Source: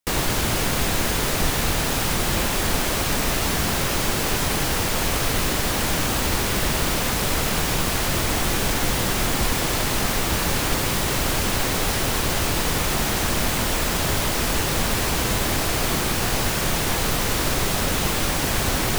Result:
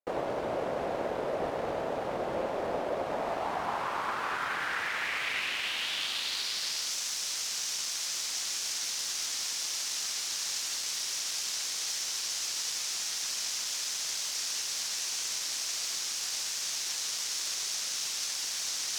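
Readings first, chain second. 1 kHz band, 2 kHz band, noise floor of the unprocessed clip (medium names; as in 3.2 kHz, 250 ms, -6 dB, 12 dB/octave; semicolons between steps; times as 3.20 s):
-10.5 dB, -11.0 dB, -24 dBFS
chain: self-modulated delay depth 0.17 ms; band-pass sweep 580 Hz -> 5.8 kHz, 2.96–6.95 s; trim +1.5 dB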